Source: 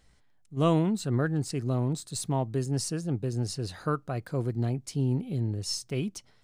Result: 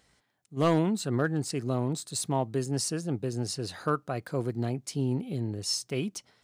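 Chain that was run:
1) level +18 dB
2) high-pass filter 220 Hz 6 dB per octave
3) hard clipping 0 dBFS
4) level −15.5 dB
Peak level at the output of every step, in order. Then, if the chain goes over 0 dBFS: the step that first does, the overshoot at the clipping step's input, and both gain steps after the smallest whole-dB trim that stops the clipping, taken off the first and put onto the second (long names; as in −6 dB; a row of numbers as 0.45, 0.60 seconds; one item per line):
+6.0, +6.0, 0.0, −15.5 dBFS
step 1, 6.0 dB
step 1 +12 dB, step 4 −9.5 dB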